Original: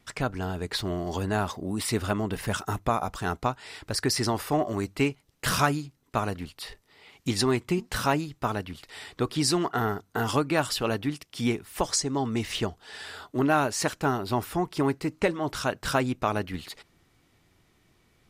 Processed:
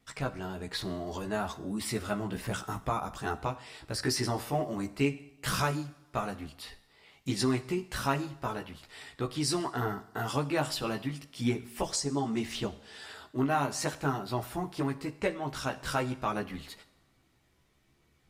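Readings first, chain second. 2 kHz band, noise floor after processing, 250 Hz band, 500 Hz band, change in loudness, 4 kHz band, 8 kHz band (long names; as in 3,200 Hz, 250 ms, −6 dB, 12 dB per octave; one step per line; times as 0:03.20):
−5.5 dB, −68 dBFS, −4.5 dB, −5.5 dB, −5.0 dB, −5.0 dB, −5.5 dB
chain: multi-voice chorus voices 2, 0.61 Hz, delay 15 ms, depth 1.1 ms
coupled-rooms reverb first 0.72 s, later 2 s, DRR 12.5 dB
level −2.5 dB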